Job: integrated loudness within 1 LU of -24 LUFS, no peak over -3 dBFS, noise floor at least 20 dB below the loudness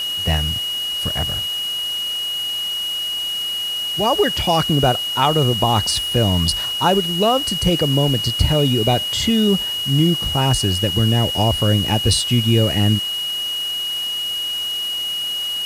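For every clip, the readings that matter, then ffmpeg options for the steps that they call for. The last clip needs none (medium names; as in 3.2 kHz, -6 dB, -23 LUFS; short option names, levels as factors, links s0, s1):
steady tone 2.9 kHz; tone level -21 dBFS; noise floor -24 dBFS; noise floor target -38 dBFS; loudness -18.0 LUFS; peak level -3.0 dBFS; loudness target -24.0 LUFS
-> -af "bandreject=f=2900:w=30"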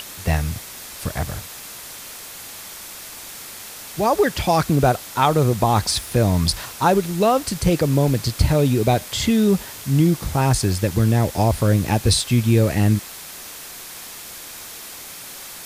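steady tone not found; noise floor -37 dBFS; noise floor target -40 dBFS
-> -af "afftdn=nr=6:nf=-37"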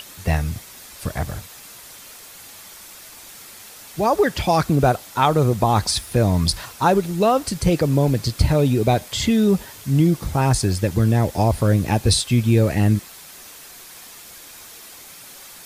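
noise floor -42 dBFS; loudness -19.5 LUFS; peak level -4.0 dBFS; loudness target -24.0 LUFS
-> -af "volume=0.596"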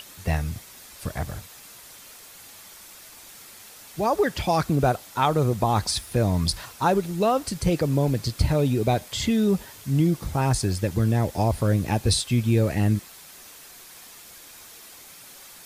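loudness -24.0 LUFS; peak level -8.5 dBFS; noise floor -46 dBFS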